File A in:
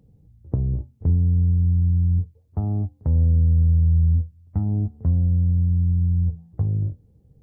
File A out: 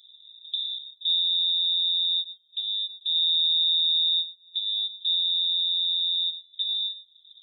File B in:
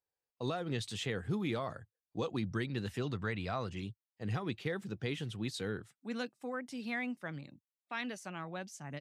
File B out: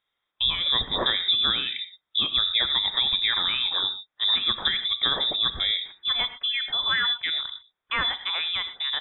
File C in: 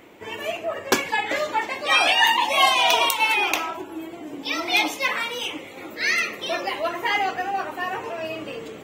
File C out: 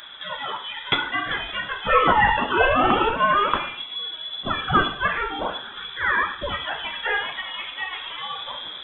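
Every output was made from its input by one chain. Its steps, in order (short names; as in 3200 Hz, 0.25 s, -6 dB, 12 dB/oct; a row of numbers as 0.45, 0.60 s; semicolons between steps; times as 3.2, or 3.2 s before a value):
EQ curve 370 Hz 0 dB, 790 Hz -15 dB, 1200 Hz -5 dB, 2500 Hz +4 dB; non-linear reverb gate 0.14 s flat, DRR 11 dB; inverted band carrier 3700 Hz; mismatched tape noise reduction encoder only; match loudness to -23 LUFS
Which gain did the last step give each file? -8.5, +9.5, -0.5 dB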